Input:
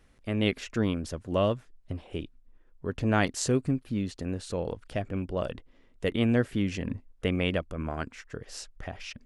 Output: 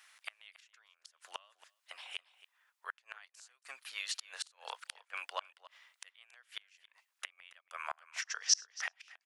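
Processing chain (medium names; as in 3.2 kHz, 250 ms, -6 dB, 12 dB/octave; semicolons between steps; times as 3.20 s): Bessel high-pass 1.5 kHz, order 6; gain riding within 4 dB 2 s; inverted gate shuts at -32 dBFS, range -33 dB; 8.22–8.73 s: resonant low-pass 5.8 kHz, resonance Q 7.9; delay 277 ms -18.5 dB; trim +8 dB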